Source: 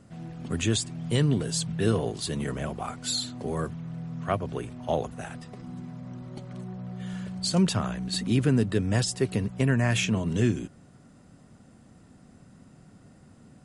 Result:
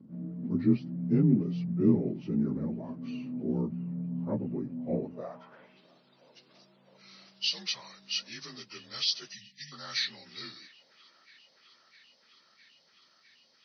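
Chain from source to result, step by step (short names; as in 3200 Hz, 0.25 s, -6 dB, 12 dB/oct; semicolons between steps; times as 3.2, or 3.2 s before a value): inharmonic rescaling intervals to 85%; band-pass sweep 240 Hz -> 4500 Hz, 5.01–5.89; band-limited delay 0.657 s, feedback 83%, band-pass 1400 Hz, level -20 dB; spectral delete 9.33–9.72, 250–1700 Hz; gain +7 dB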